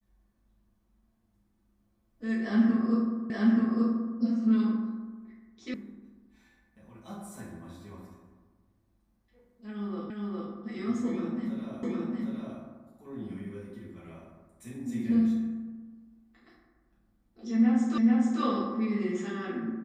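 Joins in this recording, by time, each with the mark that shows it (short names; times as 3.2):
3.3 repeat of the last 0.88 s
5.74 sound cut off
10.1 repeat of the last 0.41 s
11.83 repeat of the last 0.76 s
17.98 repeat of the last 0.44 s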